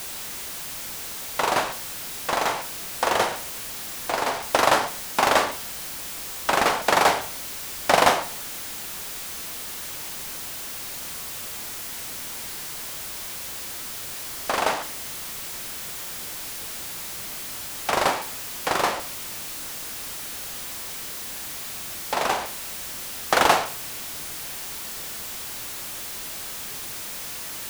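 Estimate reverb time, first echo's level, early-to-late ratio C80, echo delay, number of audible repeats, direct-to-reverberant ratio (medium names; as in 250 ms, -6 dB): 0.45 s, no echo, 17.5 dB, no echo, no echo, 10.0 dB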